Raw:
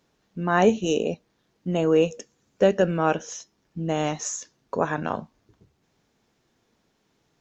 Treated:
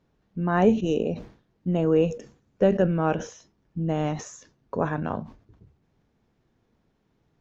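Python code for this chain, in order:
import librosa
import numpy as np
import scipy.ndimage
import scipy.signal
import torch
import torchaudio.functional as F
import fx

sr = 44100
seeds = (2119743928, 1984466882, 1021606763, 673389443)

y = fx.lowpass(x, sr, hz=2000.0, slope=6)
y = fx.low_shelf(y, sr, hz=170.0, db=11.0)
y = fx.sustainer(y, sr, db_per_s=130.0)
y = y * librosa.db_to_amplitude(-3.0)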